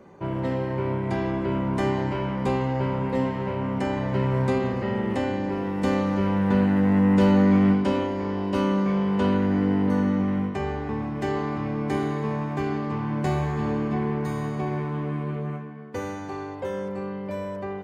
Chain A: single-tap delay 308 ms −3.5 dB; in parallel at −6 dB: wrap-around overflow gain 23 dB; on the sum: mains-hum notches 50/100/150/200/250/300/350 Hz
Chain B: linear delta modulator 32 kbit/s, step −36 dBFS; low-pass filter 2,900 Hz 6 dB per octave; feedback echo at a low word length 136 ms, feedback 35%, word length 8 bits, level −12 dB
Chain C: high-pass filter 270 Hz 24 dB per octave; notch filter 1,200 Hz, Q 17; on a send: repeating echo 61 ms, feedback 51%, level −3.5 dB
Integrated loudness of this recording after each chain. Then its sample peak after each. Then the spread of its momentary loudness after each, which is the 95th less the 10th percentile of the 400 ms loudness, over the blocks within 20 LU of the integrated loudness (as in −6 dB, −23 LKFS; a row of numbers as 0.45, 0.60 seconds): −24.5, −25.5, −25.0 LKFS; −8.5, −9.5, −9.0 dBFS; 8, 10, 9 LU